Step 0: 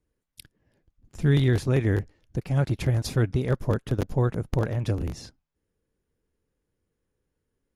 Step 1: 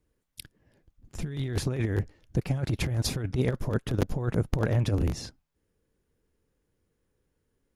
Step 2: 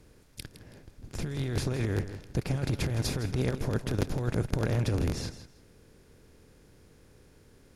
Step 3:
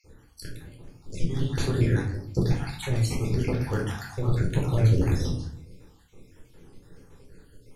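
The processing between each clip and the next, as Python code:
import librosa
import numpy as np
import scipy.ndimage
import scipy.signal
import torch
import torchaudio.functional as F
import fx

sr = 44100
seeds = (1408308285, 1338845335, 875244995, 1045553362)

y1 = fx.over_compress(x, sr, threshold_db=-25.0, ratio=-0.5)
y2 = fx.bin_compress(y1, sr, power=0.6)
y2 = fx.echo_feedback(y2, sr, ms=162, feedback_pct=21, wet_db=-12.5)
y2 = F.gain(torch.from_numpy(y2), -5.0).numpy()
y3 = fx.spec_dropout(y2, sr, seeds[0], share_pct=61)
y3 = fx.room_shoebox(y3, sr, seeds[1], volume_m3=530.0, walls='furnished', distance_m=4.2)
y3 = fx.record_warp(y3, sr, rpm=33.33, depth_cents=100.0)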